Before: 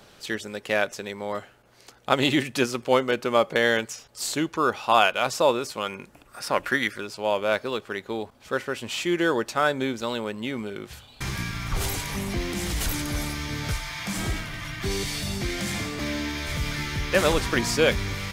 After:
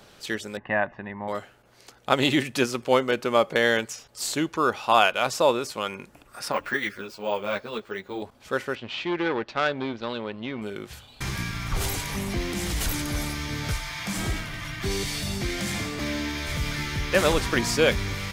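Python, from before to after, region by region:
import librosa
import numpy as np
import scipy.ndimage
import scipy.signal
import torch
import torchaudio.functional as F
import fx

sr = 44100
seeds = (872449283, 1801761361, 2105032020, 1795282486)

y = fx.chain(x, sr, fx.lowpass(hz=2000.0, slope=24),
    fx.comb(ms=1.1, depth=0.7), at=(0.57, 1.28))
y = fx.chain(y, sr, fx.high_shelf(hz=10000.0, db=-8.5),
    fx.resample_bad(factor=2, down='none', up='hold'),
    fx.ensemble(), at=(6.52, 8.22))
y = fx.chain(y, sr, fx.law_mismatch(coded='A'),
    fx.lowpass(hz=4200.0, slope=24),
    fx.transformer_sat(knee_hz=1500.0), at=(8.75, 10.62))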